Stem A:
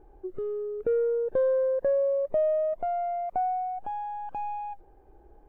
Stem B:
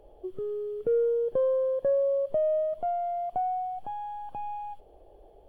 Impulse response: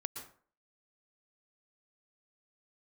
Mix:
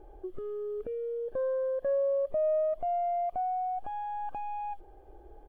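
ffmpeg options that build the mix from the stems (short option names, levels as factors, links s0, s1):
-filter_complex "[0:a]aecho=1:1:2.5:0.36,alimiter=level_in=1.68:limit=0.0631:level=0:latency=1:release=317,volume=0.596,volume=1.06[s0];[1:a]highpass=260,adelay=1,volume=0.422[s1];[s0][s1]amix=inputs=2:normalize=0,equalizer=f=170:w=4.4:g=-2.5"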